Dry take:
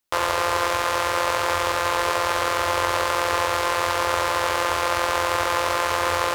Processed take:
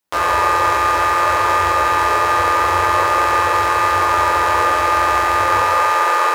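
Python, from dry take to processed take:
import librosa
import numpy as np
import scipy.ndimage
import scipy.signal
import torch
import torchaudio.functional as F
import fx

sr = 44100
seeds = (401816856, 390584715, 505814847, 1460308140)

y = fx.highpass(x, sr, hz=fx.steps((0.0, 56.0), (5.59, 370.0)), slope=24)
y = fx.rev_fdn(y, sr, rt60_s=1.5, lf_ratio=1.0, hf_ratio=0.25, size_ms=97.0, drr_db=-7.0)
y = y * 10.0 ** (-1.0 / 20.0)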